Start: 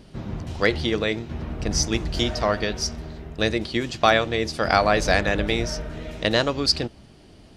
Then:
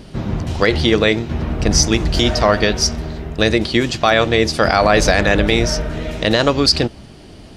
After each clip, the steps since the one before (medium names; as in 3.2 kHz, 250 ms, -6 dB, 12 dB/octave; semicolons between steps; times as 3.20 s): loudness maximiser +11 dB; trim -1 dB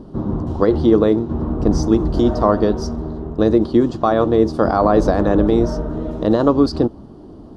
FFT filter 140 Hz 0 dB, 300 Hz +8 dB, 640 Hz 0 dB, 1.1 kHz +3 dB, 2.3 kHz -24 dB, 3.4 kHz -15 dB, 7.9 kHz -17 dB; trim -2.5 dB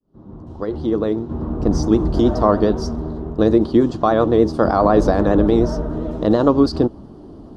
fade-in on the opening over 2.03 s; vibrato 9.8 Hz 50 cents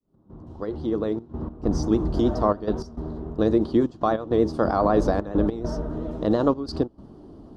trance gate "x.xxxxxx." 101 bpm -12 dB; trim -6 dB